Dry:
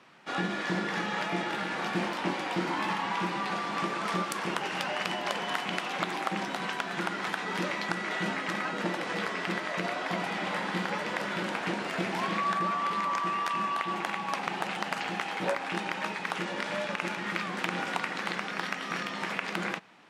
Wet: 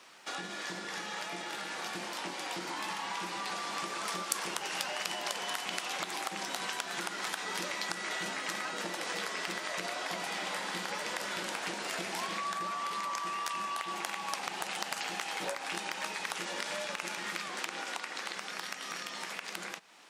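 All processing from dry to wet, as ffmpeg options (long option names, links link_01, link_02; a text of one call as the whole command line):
ffmpeg -i in.wav -filter_complex "[0:a]asettb=1/sr,asplit=3[link_01][link_02][link_03];[link_01]atrim=end=17.484[link_04];[link_02]atrim=start=17.48:end=18.36,asetpts=PTS-STARTPTS,afade=type=in:duration=0.004:curve=qsin,afade=type=out:start_time=0.876:duration=0.004:curve=qsin,highpass=frequency=210:width=0.5412,highpass=frequency=210:width=1.3066,highshelf=frequency=12000:gain=-10[link_05];[link_03]atrim=start=18.356[link_06];[link_04][link_05]acrossfade=duration=0.004:curve1=hsin:curve2=qsin[link_07];[link_07][link_06]acrossfade=duration=0.004:curve1=qsin:curve2=hsin,acrossover=split=130[link_08][link_09];[link_09]acompressor=threshold=-40dB:ratio=3[link_10];[link_08][link_10]amix=inputs=2:normalize=0,bass=frequency=250:gain=-13,treble=frequency=4000:gain=14,dynaudnorm=framelen=240:gausssize=21:maxgain=3dB" out.wav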